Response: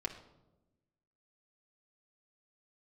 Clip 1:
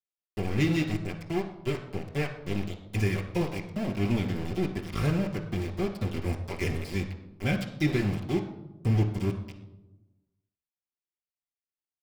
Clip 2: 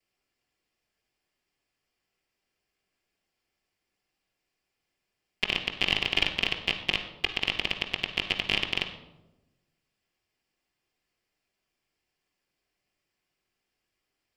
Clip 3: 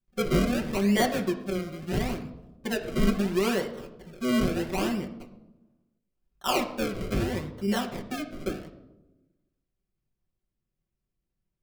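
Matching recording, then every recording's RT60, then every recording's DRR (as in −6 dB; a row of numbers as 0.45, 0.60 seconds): 3; 1.0, 1.0, 1.0 seconds; −9.5, −14.5, −1.5 decibels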